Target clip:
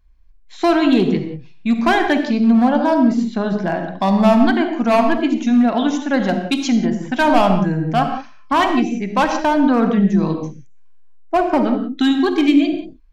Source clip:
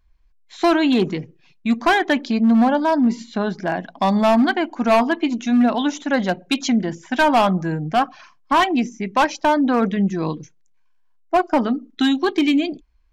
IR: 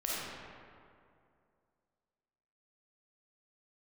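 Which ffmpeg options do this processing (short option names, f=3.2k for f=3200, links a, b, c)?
-filter_complex "[0:a]asplit=2[a][b];[1:a]atrim=start_sample=2205,afade=t=out:st=0.24:d=0.01,atrim=end_sample=11025,lowshelf=f=470:g=10.5[c];[b][c]afir=irnorm=-1:irlink=0,volume=-8dB[d];[a][d]amix=inputs=2:normalize=0,volume=-3dB"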